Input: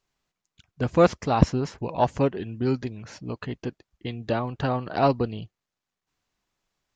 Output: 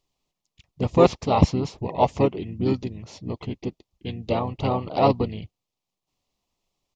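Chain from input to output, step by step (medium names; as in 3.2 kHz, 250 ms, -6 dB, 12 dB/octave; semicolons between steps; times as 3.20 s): Butterworth band-stop 1.7 kHz, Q 1.3; dynamic bell 1.9 kHz, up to +6 dB, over -39 dBFS, Q 0.74; harmony voices -5 st -7 dB, -4 st -9 dB, -3 st -17 dB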